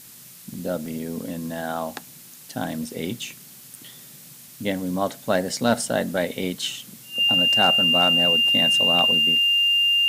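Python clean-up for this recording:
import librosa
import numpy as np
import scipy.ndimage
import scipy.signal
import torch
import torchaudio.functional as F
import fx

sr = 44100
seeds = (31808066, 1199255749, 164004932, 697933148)

y = fx.fix_declip(x, sr, threshold_db=-9.0)
y = fx.notch(y, sr, hz=2800.0, q=30.0)
y = fx.fix_interpolate(y, sr, at_s=(0.54, 0.86, 2.34, 4.48, 8.99), length_ms=1.1)
y = fx.noise_reduce(y, sr, print_start_s=4.09, print_end_s=4.59, reduce_db=23.0)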